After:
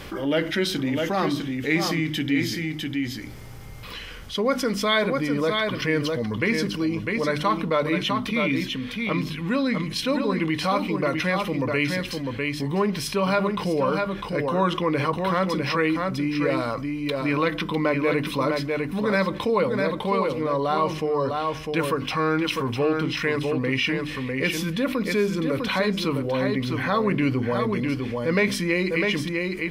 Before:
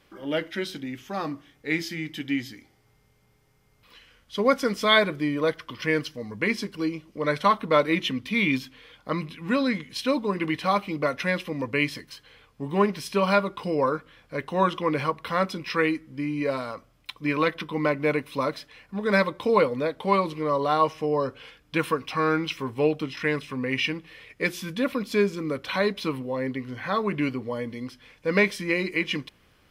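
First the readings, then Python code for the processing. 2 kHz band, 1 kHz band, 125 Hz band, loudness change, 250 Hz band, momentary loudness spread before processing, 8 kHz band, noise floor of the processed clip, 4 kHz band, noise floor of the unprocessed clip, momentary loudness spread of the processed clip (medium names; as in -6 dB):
+1.5 dB, +0.5 dB, +6.0 dB, +2.0 dB, +4.0 dB, 11 LU, +6.0 dB, -35 dBFS, +3.0 dB, -62 dBFS, 5 LU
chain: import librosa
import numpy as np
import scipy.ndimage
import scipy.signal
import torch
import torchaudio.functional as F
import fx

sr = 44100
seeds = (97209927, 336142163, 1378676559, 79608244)

p1 = fx.low_shelf(x, sr, hz=200.0, db=6.5)
p2 = fx.hum_notches(p1, sr, base_hz=50, count=6)
p3 = fx.rider(p2, sr, range_db=10, speed_s=2.0)
p4 = p3 + fx.echo_single(p3, sr, ms=652, db=-7.0, dry=0)
p5 = fx.env_flatten(p4, sr, amount_pct=50)
y = F.gain(torch.from_numpy(p5), -4.0).numpy()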